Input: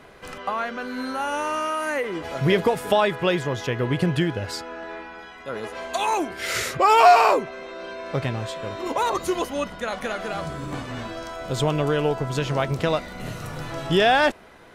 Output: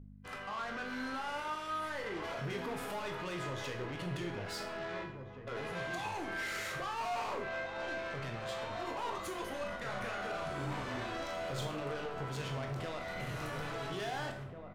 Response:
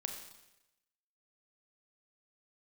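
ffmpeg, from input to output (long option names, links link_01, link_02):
-filter_complex "[0:a]lowpass=frequency=2600:poles=1,aemphasis=mode=production:type=50kf,agate=range=-45dB:threshold=-36dB:ratio=16:detection=peak,equalizer=frequency=1600:width=0.41:gain=7,acontrast=47,alimiter=limit=-17.5dB:level=0:latency=1:release=199,aeval=exprs='val(0)+0.0141*(sin(2*PI*50*n/s)+sin(2*PI*2*50*n/s)/2+sin(2*PI*3*50*n/s)/3+sin(2*PI*4*50*n/s)/4+sin(2*PI*5*50*n/s)/5)':channel_layout=same,asoftclip=type=tanh:threshold=-26.5dB,asettb=1/sr,asplit=3[link_01][link_02][link_03];[link_01]atrim=end=9.534[link_04];[link_02]atrim=start=9.53:end=12.04,asetpts=PTS-STARTPTS,afade=type=in:duration=0.004:curve=qsin,afade=type=out:start_time=2.506:duration=0.004:curve=qsin,asplit=2[link_05][link_06];[link_06]adelay=36,volume=-5dB[link_07];[link_05][link_07]amix=inputs=2:normalize=0,atrim=end_sample=110691[link_08];[link_03]atrim=start=12.036[link_09];[link_04][link_08]acrossfade=duration=0.004:curve1=hsin:curve2=qsin[link_10];[link_10][link_09]acrossfade=duration=0.004:curve1=qsin:curve2=hsin,asplit=2[link_11][link_12];[link_12]adelay=1691,volume=-6dB,highshelf=frequency=4000:gain=-38[link_13];[link_11][link_13]amix=inputs=2:normalize=0[link_14];[1:a]atrim=start_sample=2205,asetrate=83790,aresample=44100[link_15];[link_14][link_15]afir=irnorm=-1:irlink=0,volume=-3.5dB"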